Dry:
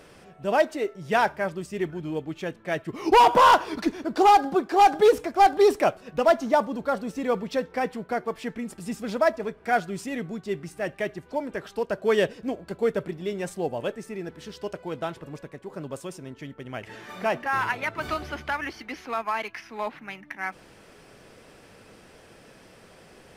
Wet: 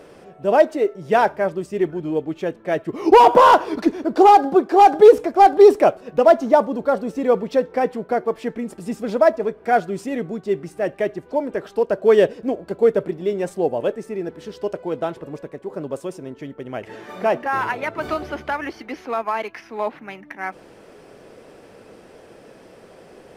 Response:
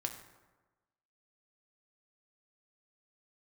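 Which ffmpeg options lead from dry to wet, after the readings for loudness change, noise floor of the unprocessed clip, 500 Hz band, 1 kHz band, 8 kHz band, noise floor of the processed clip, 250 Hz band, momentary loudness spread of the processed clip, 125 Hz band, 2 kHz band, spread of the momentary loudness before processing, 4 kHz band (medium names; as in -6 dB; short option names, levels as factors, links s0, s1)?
+6.5 dB, -52 dBFS, +8.5 dB, +5.0 dB, no reading, -47 dBFS, +6.5 dB, 19 LU, +3.0 dB, +1.5 dB, 19 LU, -0.5 dB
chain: -af "equalizer=f=450:w=0.55:g=10,volume=0.891"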